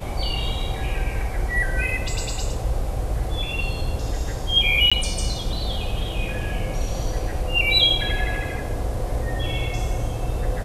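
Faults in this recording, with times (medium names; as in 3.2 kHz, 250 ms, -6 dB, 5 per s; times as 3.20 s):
4.90–4.92 s: dropout 16 ms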